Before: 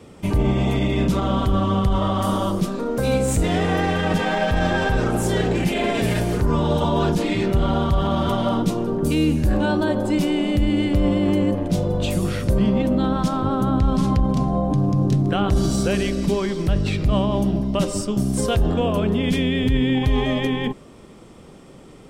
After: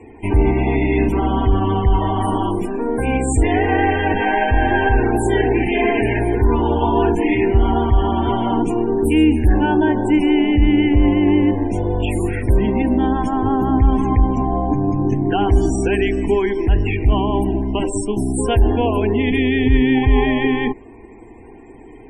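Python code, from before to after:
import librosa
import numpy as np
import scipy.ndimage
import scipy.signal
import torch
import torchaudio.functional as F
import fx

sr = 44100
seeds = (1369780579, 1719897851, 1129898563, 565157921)

y = fx.fixed_phaser(x, sr, hz=840.0, stages=8)
y = fx.spec_topn(y, sr, count=64)
y = y * 10.0 ** (7.5 / 20.0)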